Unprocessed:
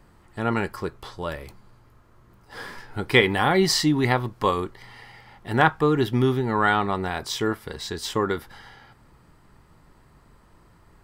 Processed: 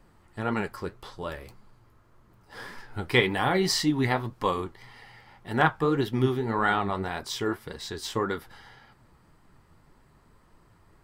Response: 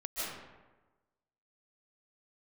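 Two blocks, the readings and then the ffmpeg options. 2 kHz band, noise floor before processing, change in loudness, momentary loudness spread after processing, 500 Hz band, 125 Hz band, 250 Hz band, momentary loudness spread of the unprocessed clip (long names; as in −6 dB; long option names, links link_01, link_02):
−4.0 dB, −56 dBFS, −4.5 dB, 16 LU, −4.5 dB, −4.0 dB, −4.0 dB, 16 LU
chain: -af "flanger=delay=3.3:depth=9.4:regen=55:speed=1.8:shape=triangular"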